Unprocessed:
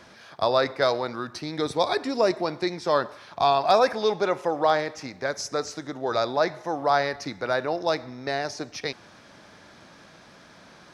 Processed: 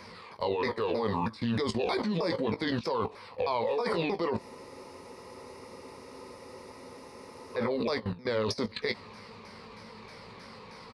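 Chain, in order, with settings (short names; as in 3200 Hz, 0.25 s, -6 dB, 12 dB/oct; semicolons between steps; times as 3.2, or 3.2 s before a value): repeated pitch sweeps -7 st, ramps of 0.315 s; ripple EQ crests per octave 0.89, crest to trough 10 dB; limiter -17 dBFS, peak gain reduction 9 dB; level quantiser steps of 19 dB; doubler 18 ms -10.5 dB; spectral freeze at 4.41, 3.15 s; gain +8.5 dB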